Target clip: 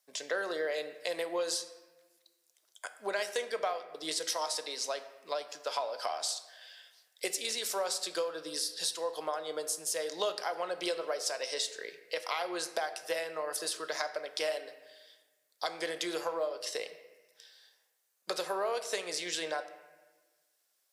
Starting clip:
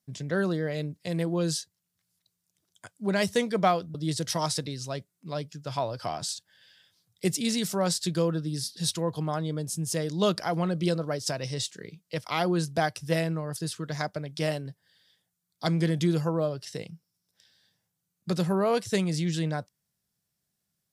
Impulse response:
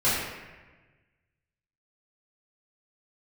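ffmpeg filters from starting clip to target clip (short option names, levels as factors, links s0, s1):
-filter_complex "[0:a]highpass=f=480:w=0.5412,highpass=f=480:w=1.3066,acompressor=threshold=0.0141:ratio=6,asplit=2[s0][s1];[1:a]atrim=start_sample=2205[s2];[s1][s2]afir=irnorm=-1:irlink=0,volume=0.0708[s3];[s0][s3]amix=inputs=2:normalize=0,volume=1.78"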